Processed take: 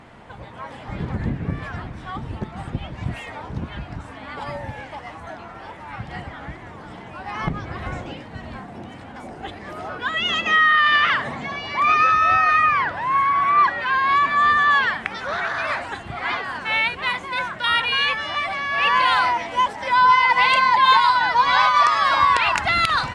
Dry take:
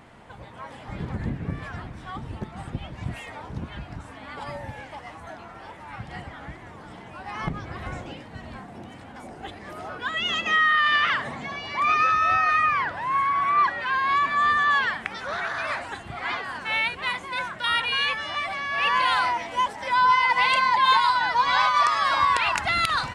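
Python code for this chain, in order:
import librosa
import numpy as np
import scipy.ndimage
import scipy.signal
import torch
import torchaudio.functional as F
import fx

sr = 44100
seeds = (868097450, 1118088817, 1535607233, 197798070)

y = fx.high_shelf(x, sr, hz=9300.0, db=-10.5)
y = y * librosa.db_to_amplitude(4.5)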